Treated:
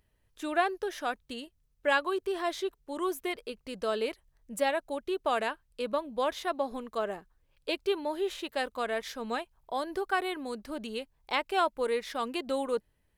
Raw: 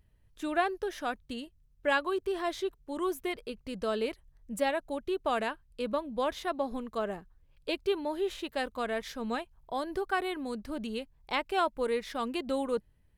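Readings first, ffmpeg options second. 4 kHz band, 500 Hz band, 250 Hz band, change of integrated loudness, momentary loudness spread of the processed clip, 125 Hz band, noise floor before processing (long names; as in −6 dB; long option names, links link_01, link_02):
+2.0 dB, +0.5 dB, −2.0 dB, +1.0 dB, 10 LU, can't be measured, −65 dBFS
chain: -af "bass=frequency=250:gain=-9,treble=frequency=4000:gain=1,volume=1.5dB"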